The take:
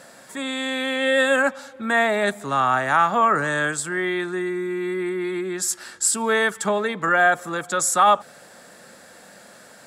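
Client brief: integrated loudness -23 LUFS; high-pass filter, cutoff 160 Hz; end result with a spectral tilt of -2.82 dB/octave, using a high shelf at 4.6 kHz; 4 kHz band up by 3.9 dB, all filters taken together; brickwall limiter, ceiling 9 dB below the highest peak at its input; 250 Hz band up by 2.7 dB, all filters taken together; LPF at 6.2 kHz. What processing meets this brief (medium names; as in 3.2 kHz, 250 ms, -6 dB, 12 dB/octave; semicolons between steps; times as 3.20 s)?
high-pass 160 Hz; low-pass 6.2 kHz; peaking EQ 250 Hz +4.5 dB; peaking EQ 4 kHz +4 dB; treble shelf 4.6 kHz +3 dB; trim +1 dB; peak limiter -14 dBFS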